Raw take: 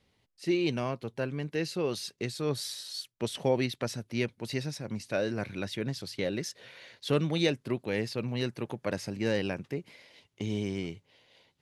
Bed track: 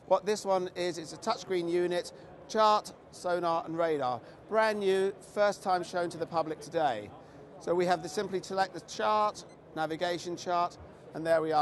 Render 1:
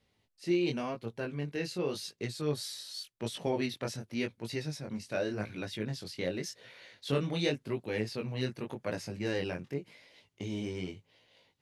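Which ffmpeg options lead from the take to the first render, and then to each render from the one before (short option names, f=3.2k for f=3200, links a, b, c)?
-af "flanger=delay=17.5:depth=5.5:speed=0.89"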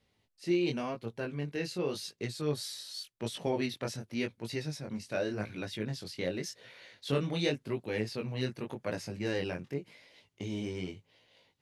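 -af anull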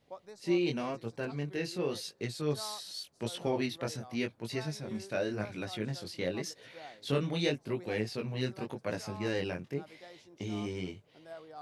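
-filter_complex "[1:a]volume=-20.5dB[a];[0:a][a]amix=inputs=2:normalize=0"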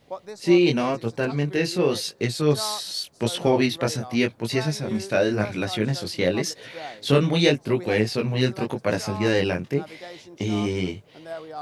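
-af "volume=12dB"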